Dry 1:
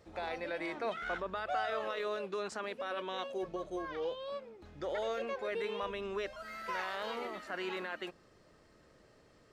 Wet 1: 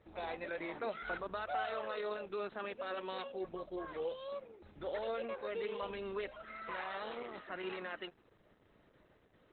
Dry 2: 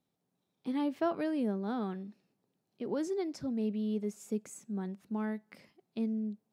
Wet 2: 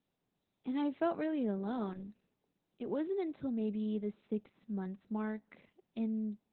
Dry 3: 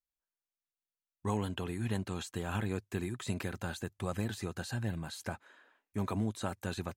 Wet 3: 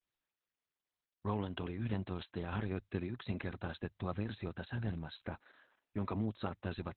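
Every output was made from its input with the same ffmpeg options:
-af "volume=-1.5dB" -ar 48000 -c:a libopus -b:a 8k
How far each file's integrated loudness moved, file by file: -3.0, -2.0, -3.5 LU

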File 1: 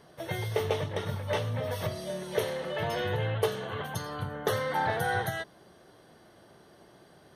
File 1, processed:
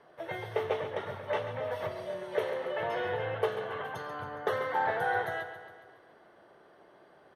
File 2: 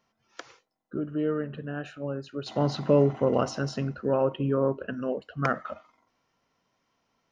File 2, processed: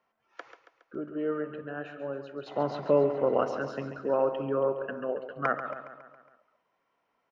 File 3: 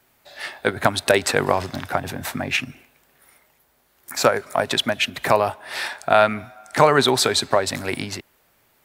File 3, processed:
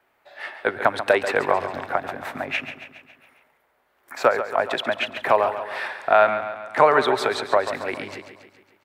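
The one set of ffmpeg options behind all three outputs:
-filter_complex "[0:a]acrossover=split=340 2700:gain=0.224 1 0.141[a][b][c];[a][b][c]amix=inputs=3:normalize=0,aecho=1:1:138|276|414|552|690|828:0.299|0.167|0.0936|0.0524|0.0294|0.0164"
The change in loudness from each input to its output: -2.0, -2.5, -1.5 LU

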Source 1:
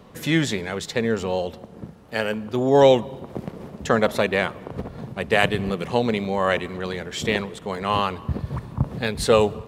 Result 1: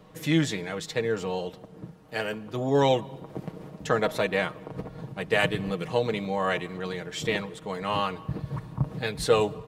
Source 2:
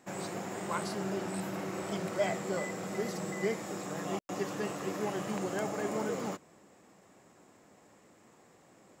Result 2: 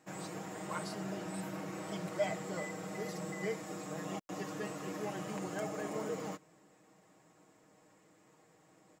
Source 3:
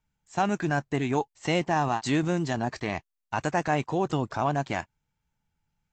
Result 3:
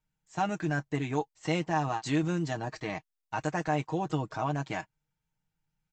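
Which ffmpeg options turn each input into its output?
-af "aecho=1:1:6.4:0.63,volume=-6dB"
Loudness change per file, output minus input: -5.5, -4.5, -4.0 LU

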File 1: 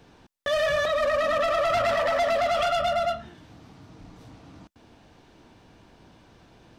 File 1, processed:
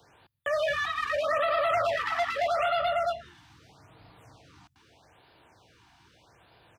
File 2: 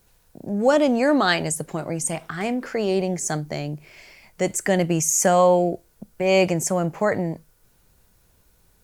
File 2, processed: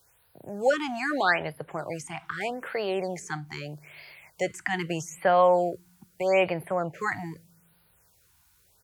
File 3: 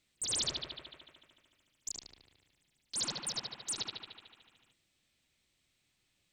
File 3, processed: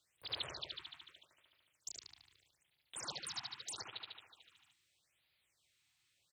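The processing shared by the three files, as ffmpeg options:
-filter_complex "[0:a]highpass=93,equalizer=f=230:w=0.97:g=-15,acrossover=split=180|3300[a][b][c];[a]aecho=1:1:134|268|402|536|670|804:0.158|0.0919|0.0533|0.0309|0.0179|0.0104[d];[c]acompressor=threshold=-46dB:ratio=6[e];[d][b][e]amix=inputs=3:normalize=0,afftfilt=real='re*(1-between(b*sr/1024,460*pow(7300/460,0.5+0.5*sin(2*PI*0.8*pts/sr))/1.41,460*pow(7300/460,0.5+0.5*sin(2*PI*0.8*pts/sr))*1.41))':imag='im*(1-between(b*sr/1024,460*pow(7300/460,0.5+0.5*sin(2*PI*0.8*pts/sr))/1.41,460*pow(7300/460,0.5+0.5*sin(2*PI*0.8*pts/sr))*1.41))':win_size=1024:overlap=0.75"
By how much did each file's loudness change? -3.5, -6.0, -8.5 LU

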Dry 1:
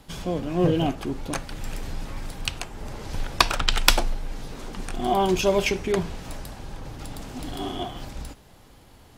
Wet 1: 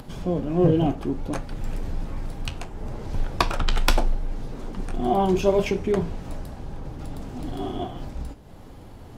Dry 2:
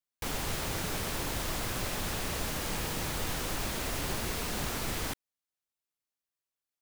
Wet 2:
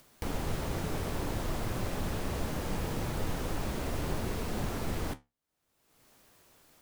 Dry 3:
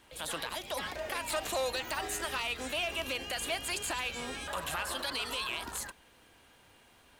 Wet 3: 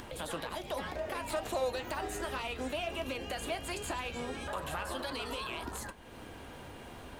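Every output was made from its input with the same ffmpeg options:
-af "tiltshelf=f=1.2k:g=6,acompressor=mode=upward:threshold=-31dB:ratio=2.5,flanger=delay=7.8:depth=7.1:regen=-64:speed=0.66:shape=triangular,volume=1.5dB"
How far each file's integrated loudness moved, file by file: -0.5, -2.0, -2.5 LU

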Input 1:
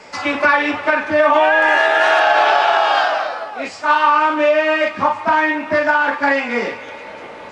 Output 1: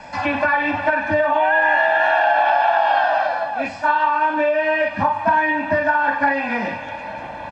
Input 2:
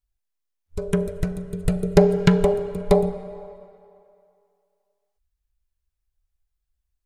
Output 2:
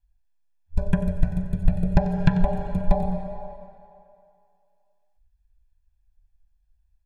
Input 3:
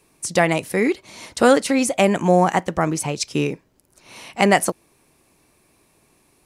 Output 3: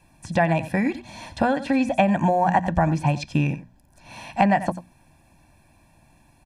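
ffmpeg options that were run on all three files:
-filter_complex "[0:a]lowshelf=f=130:g=6.5,bandreject=f=60:t=h:w=6,bandreject=f=120:t=h:w=6,bandreject=f=180:t=h:w=6,bandreject=f=240:t=h:w=6,asplit=2[a][b];[b]aecho=0:1:91:0.141[c];[a][c]amix=inputs=2:normalize=0,acrossover=split=4000[d][e];[e]acompressor=threshold=-41dB:ratio=4:attack=1:release=60[f];[d][f]amix=inputs=2:normalize=0,highshelf=f=3.5k:g=-10.5,acompressor=threshold=-18dB:ratio=6,bandreject=f=1.1k:w=23,aecho=1:1:1.2:0.89,volume=1dB"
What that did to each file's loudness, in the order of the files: -3.0, -4.5, -3.0 LU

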